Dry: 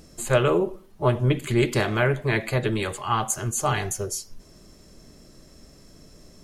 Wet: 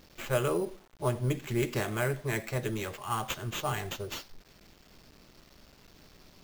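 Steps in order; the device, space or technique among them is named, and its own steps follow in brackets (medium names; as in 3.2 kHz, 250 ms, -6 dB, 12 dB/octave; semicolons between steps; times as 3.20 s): early 8-bit sampler (sample-rate reducer 9.9 kHz, jitter 0%; bit crusher 8-bit); trim -8.5 dB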